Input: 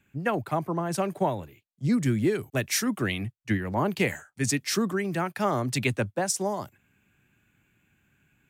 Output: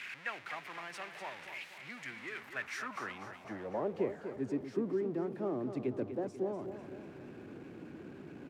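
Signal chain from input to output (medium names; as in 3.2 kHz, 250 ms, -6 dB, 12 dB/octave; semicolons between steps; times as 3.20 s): jump at every zero crossing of -26 dBFS; band-pass sweep 2.1 kHz -> 350 Hz, 2.30–4.18 s; feedback delay 246 ms, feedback 51%, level -9.5 dB; trim -5.5 dB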